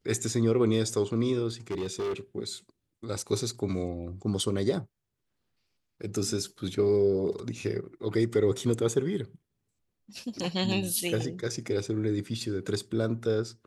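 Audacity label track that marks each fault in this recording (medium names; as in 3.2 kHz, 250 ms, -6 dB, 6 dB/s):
1.700000	2.130000	clipped -28 dBFS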